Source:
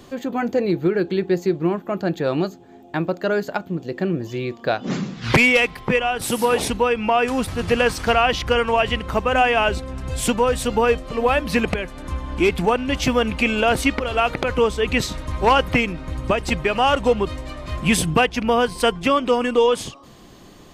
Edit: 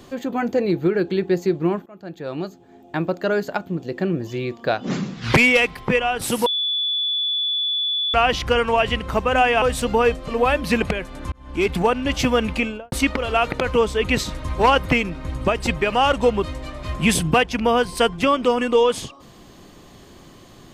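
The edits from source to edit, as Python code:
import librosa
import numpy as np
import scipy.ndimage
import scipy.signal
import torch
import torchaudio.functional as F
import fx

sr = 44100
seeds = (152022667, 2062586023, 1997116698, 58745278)

y = fx.studio_fade_out(x, sr, start_s=13.33, length_s=0.42)
y = fx.edit(y, sr, fx.fade_in_from(start_s=1.86, length_s=1.21, floor_db=-23.5),
    fx.bleep(start_s=6.46, length_s=1.68, hz=3450.0, db=-19.5),
    fx.cut(start_s=9.62, length_s=0.83),
    fx.fade_in_span(start_s=12.15, length_s=0.42), tone=tone)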